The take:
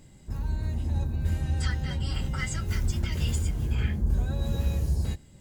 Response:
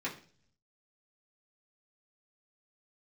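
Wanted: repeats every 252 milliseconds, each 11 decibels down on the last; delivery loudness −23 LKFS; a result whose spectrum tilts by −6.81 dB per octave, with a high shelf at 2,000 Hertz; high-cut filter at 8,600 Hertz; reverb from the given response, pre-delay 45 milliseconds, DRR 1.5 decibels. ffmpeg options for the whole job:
-filter_complex "[0:a]lowpass=8600,highshelf=frequency=2000:gain=-3.5,aecho=1:1:252|504|756:0.282|0.0789|0.0221,asplit=2[link_01][link_02];[1:a]atrim=start_sample=2205,adelay=45[link_03];[link_02][link_03]afir=irnorm=-1:irlink=0,volume=-5.5dB[link_04];[link_01][link_04]amix=inputs=2:normalize=0,volume=5.5dB"

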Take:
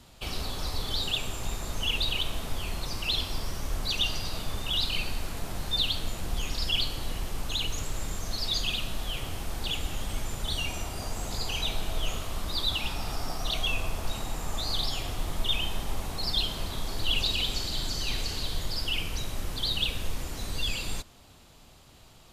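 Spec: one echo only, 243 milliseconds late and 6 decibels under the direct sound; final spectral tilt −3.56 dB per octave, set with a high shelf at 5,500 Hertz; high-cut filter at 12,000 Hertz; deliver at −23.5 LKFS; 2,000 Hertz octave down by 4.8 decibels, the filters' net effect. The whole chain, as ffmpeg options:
ffmpeg -i in.wav -af "lowpass=12000,equalizer=frequency=2000:width_type=o:gain=-8.5,highshelf=frequency=5500:gain=3.5,aecho=1:1:243:0.501,volume=7.5dB" out.wav

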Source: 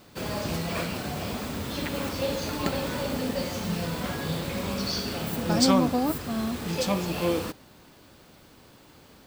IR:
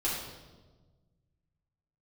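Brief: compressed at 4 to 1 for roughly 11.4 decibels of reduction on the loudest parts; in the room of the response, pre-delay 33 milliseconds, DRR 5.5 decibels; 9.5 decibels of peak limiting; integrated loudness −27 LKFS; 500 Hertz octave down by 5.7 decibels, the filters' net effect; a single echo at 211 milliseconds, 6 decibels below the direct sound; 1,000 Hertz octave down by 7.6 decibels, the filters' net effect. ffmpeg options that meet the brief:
-filter_complex "[0:a]equalizer=frequency=500:width_type=o:gain=-4.5,equalizer=frequency=1000:width_type=o:gain=-8.5,acompressor=threshold=-32dB:ratio=4,alimiter=level_in=5dB:limit=-24dB:level=0:latency=1,volume=-5dB,aecho=1:1:211:0.501,asplit=2[link_01][link_02];[1:a]atrim=start_sample=2205,adelay=33[link_03];[link_02][link_03]afir=irnorm=-1:irlink=0,volume=-12.5dB[link_04];[link_01][link_04]amix=inputs=2:normalize=0,volume=8.5dB"

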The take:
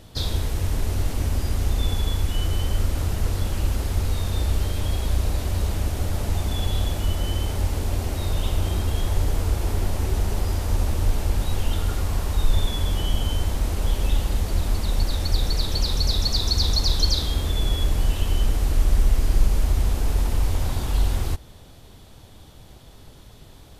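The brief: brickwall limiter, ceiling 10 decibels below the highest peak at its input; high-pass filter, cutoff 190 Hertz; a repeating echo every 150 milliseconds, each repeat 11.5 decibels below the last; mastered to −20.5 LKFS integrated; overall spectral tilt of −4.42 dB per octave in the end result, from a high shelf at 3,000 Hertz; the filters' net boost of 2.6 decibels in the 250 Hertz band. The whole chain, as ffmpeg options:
ffmpeg -i in.wav -af "highpass=190,equalizer=frequency=250:width_type=o:gain=5.5,highshelf=frequency=3000:gain=-4.5,alimiter=level_in=0.5dB:limit=-24dB:level=0:latency=1,volume=-0.5dB,aecho=1:1:150|300|450:0.266|0.0718|0.0194,volume=13dB" out.wav

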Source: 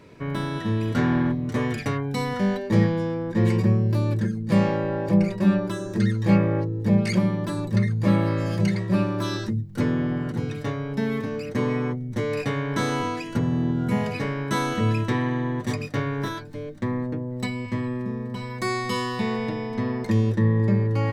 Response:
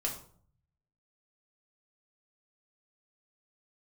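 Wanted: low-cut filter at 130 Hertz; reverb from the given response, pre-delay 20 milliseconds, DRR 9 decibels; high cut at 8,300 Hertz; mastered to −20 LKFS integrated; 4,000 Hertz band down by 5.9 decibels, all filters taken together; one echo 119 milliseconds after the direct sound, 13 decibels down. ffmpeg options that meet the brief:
-filter_complex "[0:a]highpass=130,lowpass=8300,equalizer=frequency=4000:width_type=o:gain=-7.5,aecho=1:1:119:0.224,asplit=2[link_01][link_02];[1:a]atrim=start_sample=2205,adelay=20[link_03];[link_02][link_03]afir=irnorm=-1:irlink=0,volume=-12dB[link_04];[link_01][link_04]amix=inputs=2:normalize=0,volume=5dB"

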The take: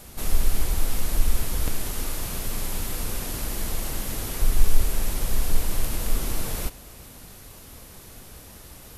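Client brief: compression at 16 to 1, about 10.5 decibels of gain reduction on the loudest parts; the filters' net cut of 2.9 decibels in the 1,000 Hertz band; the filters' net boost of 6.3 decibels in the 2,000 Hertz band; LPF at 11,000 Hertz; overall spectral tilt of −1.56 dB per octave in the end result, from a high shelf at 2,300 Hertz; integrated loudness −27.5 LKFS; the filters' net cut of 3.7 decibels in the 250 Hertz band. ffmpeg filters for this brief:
ffmpeg -i in.wav -af "lowpass=11000,equalizer=frequency=250:width_type=o:gain=-5,equalizer=frequency=1000:width_type=o:gain=-7,equalizer=frequency=2000:width_type=o:gain=5,highshelf=frequency=2300:gain=8.5,acompressor=threshold=-18dB:ratio=16" out.wav

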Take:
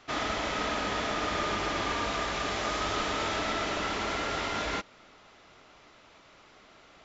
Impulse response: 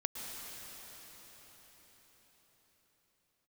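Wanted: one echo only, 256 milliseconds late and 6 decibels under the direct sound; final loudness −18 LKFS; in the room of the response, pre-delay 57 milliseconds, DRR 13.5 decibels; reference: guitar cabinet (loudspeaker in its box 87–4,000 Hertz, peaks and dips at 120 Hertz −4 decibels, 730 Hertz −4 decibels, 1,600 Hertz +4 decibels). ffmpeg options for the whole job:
-filter_complex "[0:a]aecho=1:1:256:0.501,asplit=2[link_01][link_02];[1:a]atrim=start_sample=2205,adelay=57[link_03];[link_02][link_03]afir=irnorm=-1:irlink=0,volume=-15.5dB[link_04];[link_01][link_04]amix=inputs=2:normalize=0,highpass=87,equalizer=frequency=120:width_type=q:width=4:gain=-4,equalizer=frequency=730:width_type=q:width=4:gain=-4,equalizer=frequency=1600:width_type=q:width=4:gain=4,lowpass=frequency=4000:width=0.5412,lowpass=frequency=4000:width=1.3066,volume=11.5dB"

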